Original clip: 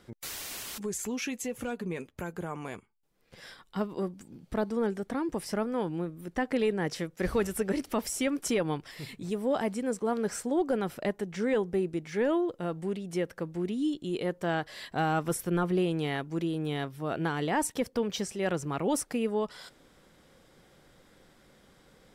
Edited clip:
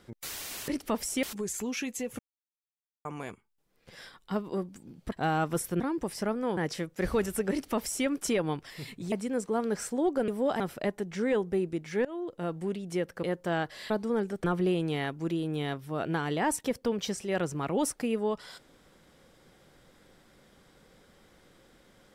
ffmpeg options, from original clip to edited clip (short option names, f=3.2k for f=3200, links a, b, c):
-filter_complex "[0:a]asplit=15[a][b][c][d][e][f][g][h][i][j][k][l][m][n][o];[a]atrim=end=0.682[p];[b]atrim=start=7.718:end=8.272[q];[c]atrim=start=0.678:end=1.64,asetpts=PTS-STARTPTS,afade=t=out:st=0.958:d=0.004:c=hsin[r];[d]atrim=start=1.64:end=2.5,asetpts=PTS-STARTPTS,volume=0[s];[e]atrim=start=2.5:end=4.572,asetpts=PTS-STARTPTS,afade=t=in:d=0.004:c=hsin[t];[f]atrim=start=14.868:end=15.552[u];[g]atrim=start=5.108:end=5.882[v];[h]atrim=start=6.778:end=9.332[w];[i]atrim=start=9.648:end=10.812[x];[j]atrim=start=9.328:end=9.652[y];[k]atrim=start=10.808:end=12.26,asetpts=PTS-STARTPTS,afade=t=out:st=1.448:d=0.004:c=hsin:silence=0.0707946[z];[l]atrim=start=12.26:end=13.442,asetpts=PTS-STARTPTS,afade=t=in:d=0.4:silence=0.0707946[aa];[m]atrim=start=14.198:end=14.872[ab];[n]atrim=start=4.568:end=5.112[ac];[o]atrim=start=15.548[ad];[p][q]acrossfade=d=0.004:c1=hsin:c2=hsin[ae];[r][s][t]concat=n=3:v=0:a=1[af];[ae][af]acrossfade=d=0.004:c1=hsin:c2=hsin[ag];[ag][u]acrossfade=d=0.004:c1=hsin:c2=hsin[ah];[ah][v]acrossfade=d=0.004:c1=hsin:c2=hsin[ai];[ai][w]acrossfade=d=0.004:c1=hsin:c2=hsin[aj];[aj][x]acrossfade=d=0.004:c1=hsin:c2=hsin[ak];[ak][y]acrossfade=d=0.004:c1=hsin:c2=hsin[al];[z][aa]concat=n=2:v=0:a=1[am];[al][am]acrossfade=d=0.004:c1=hsin:c2=hsin[an];[an][ab]acrossfade=d=0.004:c1=hsin:c2=hsin[ao];[ao][ac]acrossfade=d=0.004:c1=hsin:c2=hsin[ap];[ap][ad]acrossfade=d=0.004:c1=hsin:c2=hsin"